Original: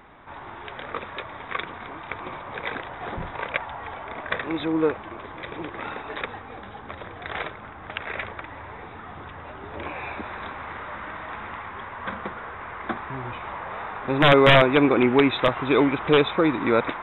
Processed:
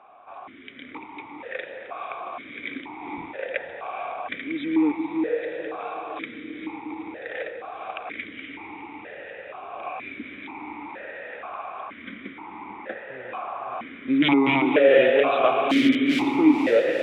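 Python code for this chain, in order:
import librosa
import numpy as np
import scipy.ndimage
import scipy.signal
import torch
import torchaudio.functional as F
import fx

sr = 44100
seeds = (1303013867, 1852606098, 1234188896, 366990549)

y = fx.overflow_wrap(x, sr, gain_db=16.5, at=(15.55, 16.25))
y = fx.echo_diffused(y, sr, ms=481, feedback_pct=69, wet_db=-4.5)
y = fx.vowel_held(y, sr, hz=2.1)
y = F.gain(torch.from_numpy(y), 8.5).numpy()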